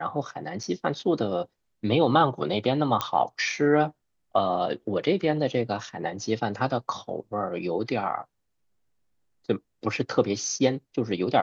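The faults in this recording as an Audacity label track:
0.630000	0.640000	drop-out 5.6 ms
3.010000	3.010000	click −10 dBFS

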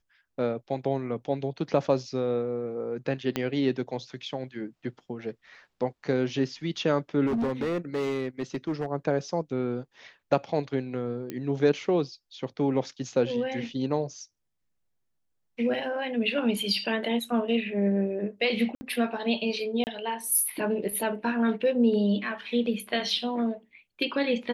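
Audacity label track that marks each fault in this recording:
3.360000	3.360000	click −13 dBFS
7.260000	8.860000	clipping −24 dBFS
11.300000	11.300000	click −20 dBFS
18.750000	18.810000	drop-out 60 ms
19.840000	19.870000	drop-out 29 ms

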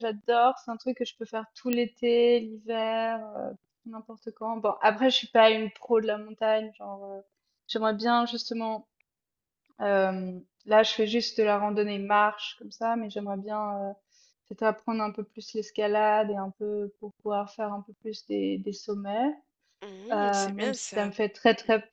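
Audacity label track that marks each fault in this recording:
1.730000	1.730000	click −12 dBFS

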